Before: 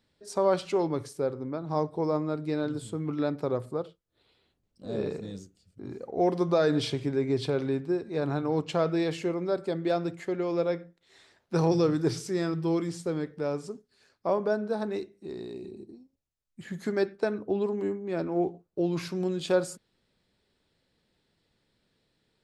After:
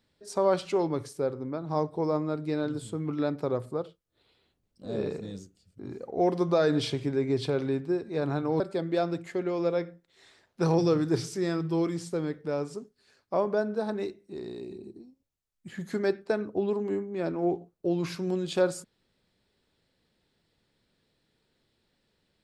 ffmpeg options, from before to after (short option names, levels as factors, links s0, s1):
-filter_complex "[0:a]asplit=2[s0][s1];[s0]atrim=end=8.602[s2];[s1]atrim=start=9.528[s3];[s2][s3]acrossfade=d=0.004:c1=hsin:c2=hsin"